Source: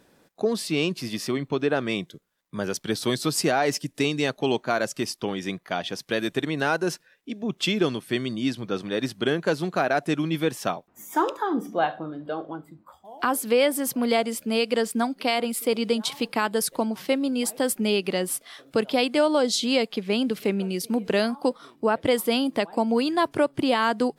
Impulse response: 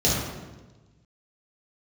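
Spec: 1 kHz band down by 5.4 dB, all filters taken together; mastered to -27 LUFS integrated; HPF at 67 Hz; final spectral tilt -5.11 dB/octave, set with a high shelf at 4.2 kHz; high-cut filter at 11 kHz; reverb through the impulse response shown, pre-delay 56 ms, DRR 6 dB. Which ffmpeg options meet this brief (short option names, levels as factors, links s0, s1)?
-filter_complex "[0:a]highpass=67,lowpass=11000,equalizer=f=1000:t=o:g=-7.5,highshelf=f=4200:g=-5,asplit=2[s0][s1];[1:a]atrim=start_sample=2205,adelay=56[s2];[s1][s2]afir=irnorm=-1:irlink=0,volume=0.0794[s3];[s0][s3]amix=inputs=2:normalize=0,volume=0.75"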